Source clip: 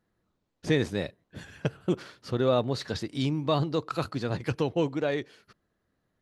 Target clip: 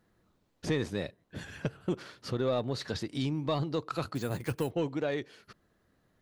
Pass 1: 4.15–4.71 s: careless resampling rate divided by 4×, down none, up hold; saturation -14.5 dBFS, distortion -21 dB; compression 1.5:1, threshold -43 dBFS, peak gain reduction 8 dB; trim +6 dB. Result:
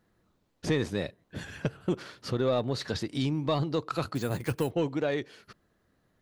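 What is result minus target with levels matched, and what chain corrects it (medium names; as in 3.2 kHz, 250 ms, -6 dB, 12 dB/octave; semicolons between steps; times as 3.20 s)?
compression: peak gain reduction -3 dB
4.15–4.71 s: careless resampling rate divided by 4×, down none, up hold; saturation -14.5 dBFS, distortion -21 dB; compression 1.5:1, threshold -51.5 dBFS, peak gain reduction 11 dB; trim +6 dB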